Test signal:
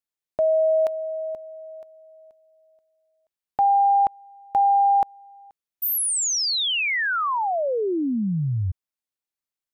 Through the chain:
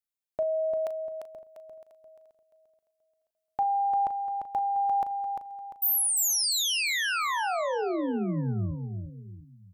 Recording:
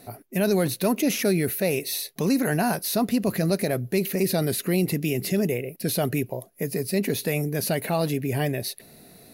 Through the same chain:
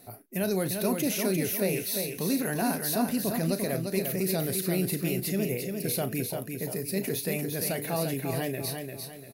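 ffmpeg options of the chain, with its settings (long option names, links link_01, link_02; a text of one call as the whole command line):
ffmpeg -i in.wav -filter_complex "[0:a]highshelf=frequency=8400:gain=6.5,asplit=2[link_01][link_02];[link_02]adelay=37,volume=-12.5dB[link_03];[link_01][link_03]amix=inputs=2:normalize=0,aecho=1:1:347|694|1041|1388:0.531|0.196|0.0727|0.0269,volume=-6.5dB" out.wav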